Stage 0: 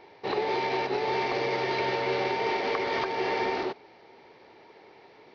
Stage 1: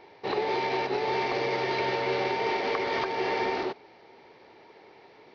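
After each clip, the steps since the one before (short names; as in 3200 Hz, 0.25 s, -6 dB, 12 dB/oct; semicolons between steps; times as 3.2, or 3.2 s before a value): nothing audible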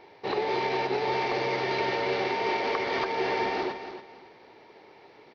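feedback echo 0.281 s, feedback 25%, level -10 dB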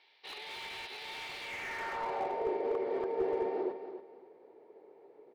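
band-pass sweep 3400 Hz -> 440 Hz, 1.41–2.51; slew limiter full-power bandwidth 24 Hz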